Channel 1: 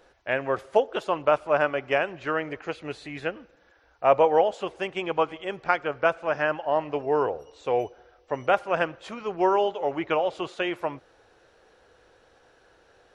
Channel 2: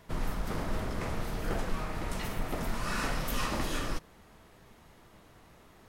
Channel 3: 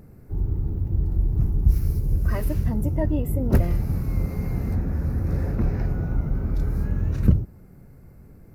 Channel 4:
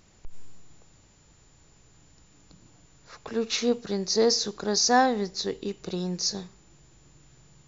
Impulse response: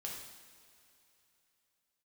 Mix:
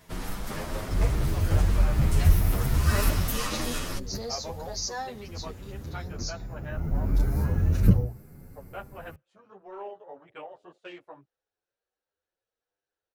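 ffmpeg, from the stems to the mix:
-filter_complex "[0:a]acontrast=79,flanger=delay=1.5:depth=8.8:regen=-36:speed=1.8:shape=sinusoidal,afwtdn=0.0224,adelay=250,volume=-18dB[a];[1:a]volume=2.5dB[b];[2:a]bandreject=f=60:t=h:w=6,bandreject=f=120:t=h:w=6,adelay=600,volume=3dB[c];[3:a]dynaudnorm=f=250:g=11:m=11.5dB,volume=-19.5dB,asplit=2[d][e];[e]apad=whole_len=403447[f];[c][f]sidechaincompress=threshold=-54dB:ratio=5:attack=7.3:release=616[g];[a][b][g][d]amix=inputs=4:normalize=0,highshelf=f=3.6k:g=8.5,asplit=2[h][i];[i]adelay=9.1,afreqshift=1.3[j];[h][j]amix=inputs=2:normalize=1"

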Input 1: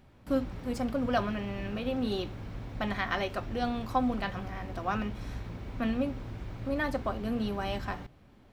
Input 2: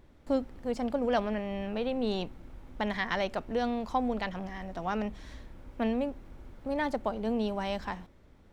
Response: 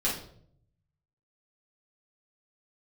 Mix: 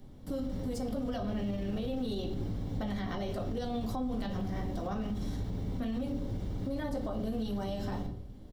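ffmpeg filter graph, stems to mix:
-filter_complex "[0:a]bandreject=f=2.5k:w=6.9,volume=1.5dB,asplit=2[a][b];[b]volume=-8.5dB[c];[1:a]aphaser=in_gain=1:out_gain=1:delay=3.7:decay=0.55:speed=0.36:type=triangular,adelay=22,volume=-4dB[d];[2:a]atrim=start_sample=2205[e];[c][e]afir=irnorm=-1:irlink=0[f];[a][d][f]amix=inputs=3:normalize=0,equalizer=f=1.6k:t=o:w=1.7:g=-12.5,acrossover=split=110|930[g][h][i];[g]acompressor=threshold=-34dB:ratio=4[j];[h]acompressor=threshold=-29dB:ratio=4[k];[i]acompressor=threshold=-41dB:ratio=4[l];[j][k][l]amix=inputs=3:normalize=0,alimiter=level_in=3dB:limit=-24dB:level=0:latency=1:release=42,volume=-3dB"

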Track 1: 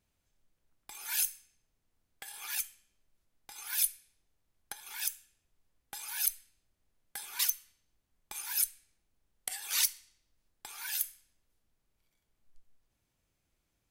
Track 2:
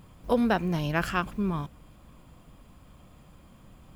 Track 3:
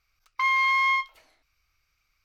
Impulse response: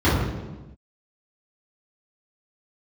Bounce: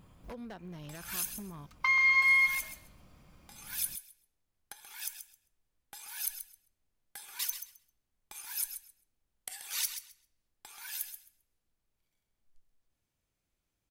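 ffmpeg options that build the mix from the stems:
-filter_complex "[0:a]volume=-5dB,asplit=2[a][b];[b]volume=-9.5dB[c];[1:a]acompressor=threshold=-34dB:ratio=16,aeval=exprs='0.0266*(abs(mod(val(0)/0.0266+3,4)-2)-1)':c=same,volume=-6.5dB[d];[2:a]acompressor=threshold=-25dB:ratio=6,aecho=1:1:3.3:0.57,adelay=1450,volume=0dB,asplit=2[e][f];[f]volume=-7.5dB[g];[c][g]amix=inputs=2:normalize=0,aecho=0:1:132|264|396:1|0.17|0.0289[h];[a][d][e][h]amix=inputs=4:normalize=0"

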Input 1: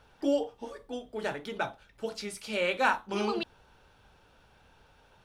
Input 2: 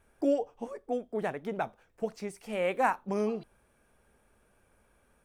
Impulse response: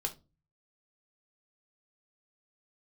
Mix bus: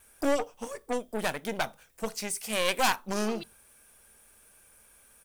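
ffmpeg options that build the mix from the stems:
-filter_complex "[0:a]volume=-10dB[a];[1:a]aeval=exprs='(tanh(25.1*val(0)+0.75)-tanh(0.75))/25.1':c=same,crystalizer=i=9:c=0,adelay=1.4,volume=1.5dB,asplit=3[b][c][d];[c]volume=-17.5dB[e];[d]apad=whole_len=231695[f];[a][f]sidechaingate=range=-33dB:threshold=-53dB:ratio=16:detection=peak[g];[2:a]atrim=start_sample=2205[h];[e][h]afir=irnorm=-1:irlink=0[i];[g][b][i]amix=inputs=3:normalize=0"

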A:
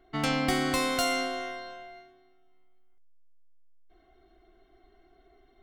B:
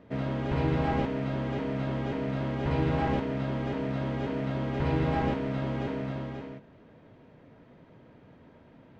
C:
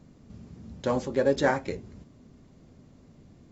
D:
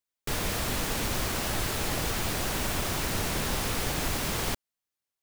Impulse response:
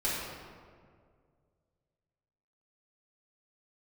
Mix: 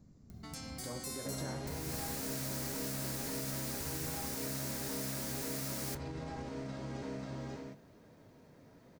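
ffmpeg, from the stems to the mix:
-filter_complex "[0:a]alimiter=limit=-22dB:level=0:latency=1:release=66,acompressor=threshold=-40dB:ratio=2,adelay=300,volume=-7.5dB[a];[1:a]acompressor=threshold=-29dB:ratio=6,adelay=1150,volume=-0.5dB[b];[2:a]volume=-7.5dB[c];[3:a]highpass=f=1.3k:w=0.5412,highpass=f=1.3k:w=1.3066,adelay=1400,volume=-9dB[d];[a][b]amix=inputs=2:normalize=0,acompressor=mode=upward:threshold=-56dB:ratio=2.5,alimiter=level_in=5.5dB:limit=-24dB:level=0:latency=1:release=101,volume=-5.5dB,volume=0dB[e];[c][d]amix=inputs=2:normalize=0,bass=f=250:g=8,treble=f=4k:g=-13,alimiter=level_in=7dB:limit=-24dB:level=0:latency=1:release=282,volume=-7dB,volume=0dB[f];[e][f]amix=inputs=2:normalize=0,aexciter=amount=9.1:drive=2.7:freq=4.5k,flanger=delay=9.8:depth=2.9:regen=-77:speed=1:shape=sinusoidal"

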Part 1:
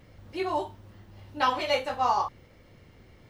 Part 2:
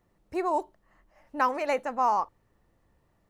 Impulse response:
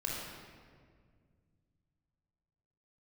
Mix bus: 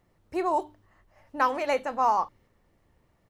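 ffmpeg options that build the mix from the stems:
-filter_complex "[0:a]volume=-13.5dB[a];[1:a]bandreject=f=50:t=h:w=6,bandreject=f=100:t=h:w=6,bandreject=f=150:t=h:w=6,bandreject=f=200:t=h:w=6,bandreject=f=250:t=h:w=6,bandreject=f=300:t=h:w=6,adelay=0.8,volume=1dB,asplit=2[b][c];[c]apad=whole_len=145429[d];[a][d]sidechaingate=range=-6dB:threshold=-57dB:ratio=16:detection=peak[e];[e][b]amix=inputs=2:normalize=0"

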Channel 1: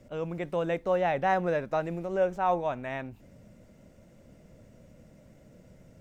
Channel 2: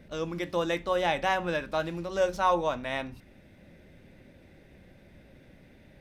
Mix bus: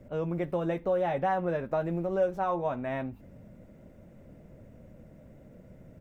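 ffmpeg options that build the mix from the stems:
-filter_complex "[0:a]acompressor=threshold=-28dB:ratio=6,volume=3dB[a];[1:a]volume=-1,adelay=7,volume=-8dB[b];[a][b]amix=inputs=2:normalize=0,equalizer=f=5.5k:t=o:w=2.6:g=-13"

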